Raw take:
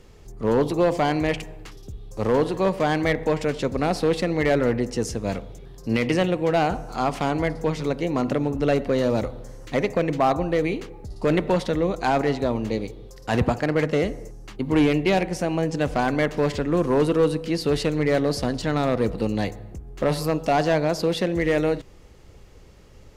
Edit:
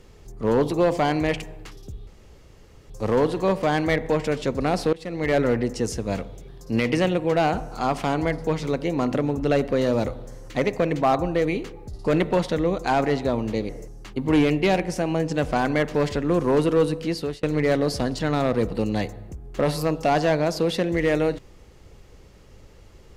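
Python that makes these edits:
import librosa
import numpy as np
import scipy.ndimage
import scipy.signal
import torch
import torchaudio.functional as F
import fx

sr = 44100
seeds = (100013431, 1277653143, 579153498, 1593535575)

y = fx.edit(x, sr, fx.insert_room_tone(at_s=2.07, length_s=0.83),
    fx.fade_in_from(start_s=4.1, length_s=0.44, floor_db=-23.0),
    fx.cut(start_s=12.86, length_s=1.26),
    fx.fade_out_span(start_s=17.37, length_s=0.49, curve='qsin'), tone=tone)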